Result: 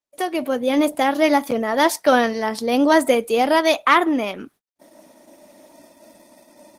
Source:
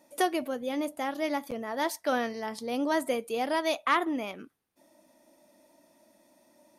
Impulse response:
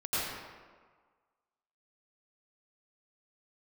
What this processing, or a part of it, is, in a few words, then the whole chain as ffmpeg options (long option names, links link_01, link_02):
video call: -af "highpass=120,dynaudnorm=framelen=260:gausssize=3:maxgain=14.5dB,agate=range=-35dB:threshold=-48dB:ratio=16:detection=peak" -ar 48000 -c:a libopus -b:a 16k